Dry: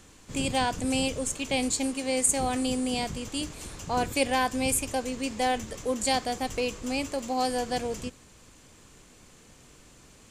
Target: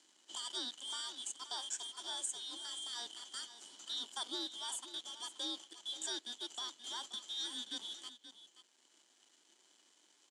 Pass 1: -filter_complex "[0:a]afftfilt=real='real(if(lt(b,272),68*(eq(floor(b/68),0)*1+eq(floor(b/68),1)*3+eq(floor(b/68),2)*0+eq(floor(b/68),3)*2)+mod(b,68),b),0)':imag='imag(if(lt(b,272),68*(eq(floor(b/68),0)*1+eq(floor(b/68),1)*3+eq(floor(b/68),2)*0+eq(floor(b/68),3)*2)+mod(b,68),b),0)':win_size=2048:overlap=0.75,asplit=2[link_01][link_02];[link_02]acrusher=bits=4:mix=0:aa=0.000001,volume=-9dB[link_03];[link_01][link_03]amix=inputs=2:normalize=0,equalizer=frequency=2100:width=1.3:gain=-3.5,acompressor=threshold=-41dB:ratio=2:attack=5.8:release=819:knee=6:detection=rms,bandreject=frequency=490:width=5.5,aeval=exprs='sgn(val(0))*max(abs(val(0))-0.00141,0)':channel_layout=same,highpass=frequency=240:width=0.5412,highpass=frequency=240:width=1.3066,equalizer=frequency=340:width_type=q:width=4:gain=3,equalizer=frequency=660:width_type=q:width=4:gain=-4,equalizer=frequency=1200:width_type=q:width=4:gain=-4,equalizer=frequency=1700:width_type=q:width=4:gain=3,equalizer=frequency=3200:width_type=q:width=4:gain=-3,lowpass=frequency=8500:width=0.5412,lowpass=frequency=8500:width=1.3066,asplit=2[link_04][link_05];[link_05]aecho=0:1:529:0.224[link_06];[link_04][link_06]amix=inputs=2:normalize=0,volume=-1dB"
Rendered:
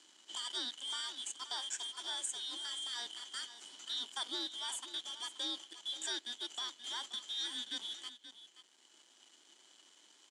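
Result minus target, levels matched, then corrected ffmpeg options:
2,000 Hz band +3.5 dB
-filter_complex "[0:a]afftfilt=real='real(if(lt(b,272),68*(eq(floor(b/68),0)*1+eq(floor(b/68),1)*3+eq(floor(b/68),2)*0+eq(floor(b/68),3)*2)+mod(b,68),b),0)':imag='imag(if(lt(b,272),68*(eq(floor(b/68),0)*1+eq(floor(b/68),1)*3+eq(floor(b/68),2)*0+eq(floor(b/68),3)*2)+mod(b,68),b),0)':win_size=2048:overlap=0.75,asplit=2[link_01][link_02];[link_02]acrusher=bits=4:mix=0:aa=0.000001,volume=-9dB[link_03];[link_01][link_03]amix=inputs=2:normalize=0,equalizer=frequency=2100:width=1.3:gain=-13,acompressor=threshold=-41dB:ratio=2:attack=5.8:release=819:knee=6:detection=rms,bandreject=frequency=490:width=5.5,aeval=exprs='sgn(val(0))*max(abs(val(0))-0.00141,0)':channel_layout=same,highpass=frequency=240:width=0.5412,highpass=frequency=240:width=1.3066,equalizer=frequency=340:width_type=q:width=4:gain=3,equalizer=frequency=660:width_type=q:width=4:gain=-4,equalizer=frequency=1200:width_type=q:width=4:gain=-4,equalizer=frequency=1700:width_type=q:width=4:gain=3,equalizer=frequency=3200:width_type=q:width=4:gain=-3,lowpass=frequency=8500:width=0.5412,lowpass=frequency=8500:width=1.3066,asplit=2[link_04][link_05];[link_05]aecho=0:1:529:0.224[link_06];[link_04][link_06]amix=inputs=2:normalize=0,volume=-1dB"

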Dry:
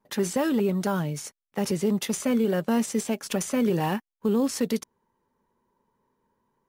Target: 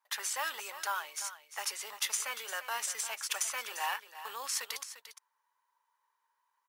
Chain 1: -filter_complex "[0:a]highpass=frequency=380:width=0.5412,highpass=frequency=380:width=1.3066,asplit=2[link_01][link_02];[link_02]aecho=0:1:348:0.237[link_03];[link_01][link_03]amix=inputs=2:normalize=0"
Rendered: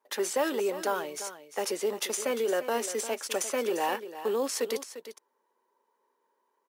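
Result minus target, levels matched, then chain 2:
500 Hz band +16.5 dB
-filter_complex "[0:a]highpass=frequency=960:width=0.5412,highpass=frequency=960:width=1.3066,asplit=2[link_01][link_02];[link_02]aecho=0:1:348:0.237[link_03];[link_01][link_03]amix=inputs=2:normalize=0"

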